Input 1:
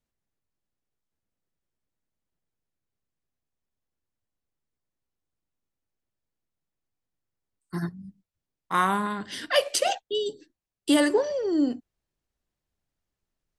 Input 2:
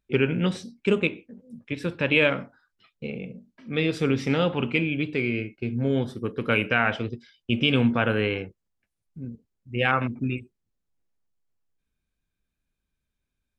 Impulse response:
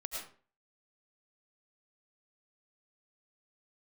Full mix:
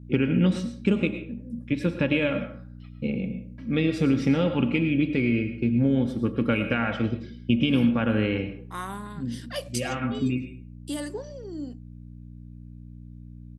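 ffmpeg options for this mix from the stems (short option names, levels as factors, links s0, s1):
-filter_complex "[0:a]bass=f=250:g=-7,treble=f=4000:g=8,dynaudnorm=f=210:g=31:m=3.76,volume=0.15,asplit=2[s0][s1];[1:a]aecho=1:1:3.6:0.4,acompressor=threshold=0.0708:ratio=4,volume=0.596,asplit=2[s2][s3];[s3]volume=0.631[s4];[s1]apad=whole_len=599187[s5];[s2][s5]sidechaincompress=threshold=0.01:ratio=8:attack=16:release=734[s6];[2:a]atrim=start_sample=2205[s7];[s4][s7]afir=irnorm=-1:irlink=0[s8];[s0][s6][s8]amix=inputs=3:normalize=0,aeval=exprs='val(0)+0.00398*(sin(2*PI*60*n/s)+sin(2*PI*2*60*n/s)/2+sin(2*PI*3*60*n/s)/3+sin(2*PI*4*60*n/s)/4+sin(2*PI*5*60*n/s)/5)':c=same,equalizer=f=150:t=o:w=2.4:g=10"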